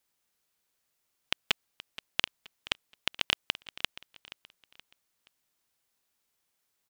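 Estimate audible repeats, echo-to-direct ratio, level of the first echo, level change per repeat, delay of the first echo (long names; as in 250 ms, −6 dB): 3, −16.0 dB, −16.5 dB, −8.5 dB, 475 ms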